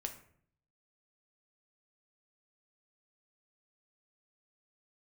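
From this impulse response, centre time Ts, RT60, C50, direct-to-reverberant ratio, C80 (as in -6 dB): 12 ms, 0.60 s, 10.5 dB, 4.5 dB, 14.0 dB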